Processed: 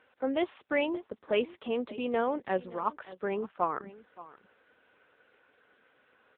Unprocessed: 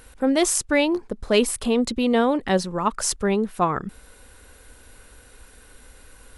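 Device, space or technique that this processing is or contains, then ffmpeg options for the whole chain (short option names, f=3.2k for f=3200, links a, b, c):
satellite phone: -af "highpass=330,lowpass=3.2k,aecho=1:1:572:0.126,volume=-7dB" -ar 8000 -c:a libopencore_amrnb -b:a 6700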